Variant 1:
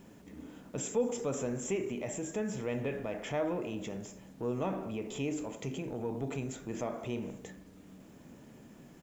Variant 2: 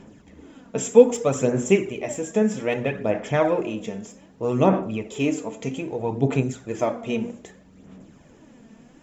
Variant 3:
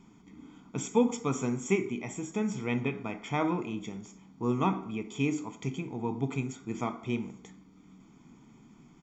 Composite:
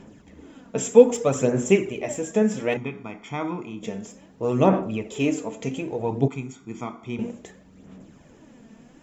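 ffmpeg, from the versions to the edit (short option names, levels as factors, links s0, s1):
-filter_complex "[2:a]asplit=2[s0][s1];[1:a]asplit=3[s2][s3][s4];[s2]atrim=end=2.772[s5];[s0]atrim=start=2.768:end=3.832[s6];[s3]atrim=start=3.828:end=6.282[s7];[s1]atrim=start=6.278:end=7.192[s8];[s4]atrim=start=7.188[s9];[s5][s6]acrossfade=d=0.004:c1=hsin:c2=hsin[s10];[s10][s7]acrossfade=d=0.004:c1=hsin:c2=hsin[s11];[s11][s8]acrossfade=d=0.004:c1=hsin:c2=hsin[s12];[s12][s9]acrossfade=d=0.004:c1=hsin:c2=hsin"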